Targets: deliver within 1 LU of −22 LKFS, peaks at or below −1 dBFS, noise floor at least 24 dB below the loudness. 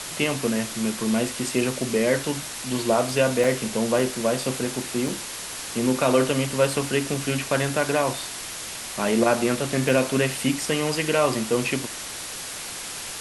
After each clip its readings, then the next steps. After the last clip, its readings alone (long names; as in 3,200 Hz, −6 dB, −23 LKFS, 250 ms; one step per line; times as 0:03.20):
number of dropouts 4; longest dropout 2.9 ms; background noise floor −35 dBFS; target noise floor −48 dBFS; integrated loudness −24.0 LKFS; sample peak −7.0 dBFS; target loudness −22.0 LKFS
→ repair the gap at 0:03.44/0:03.99/0:05.08/0:09.89, 2.9 ms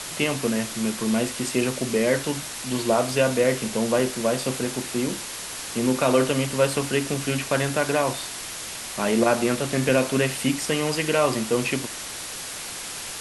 number of dropouts 0; background noise floor −35 dBFS; target noise floor −48 dBFS
→ noise reduction from a noise print 13 dB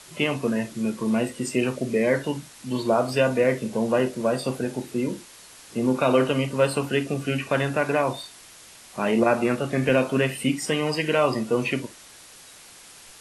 background noise floor −48 dBFS; target noise floor −49 dBFS
→ noise reduction from a noise print 6 dB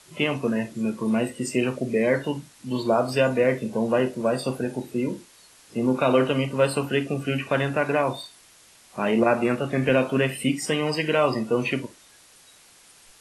background noise floor −54 dBFS; integrated loudness −24.5 LKFS; sample peak −7.5 dBFS; target loudness −22.0 LKFS
→ level +2.5 dB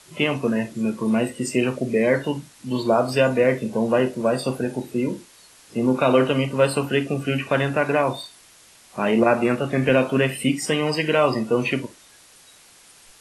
integrated loudness −22.0 LKFS; sample peak −5.0 dBFS; background noise floor −51 dBFS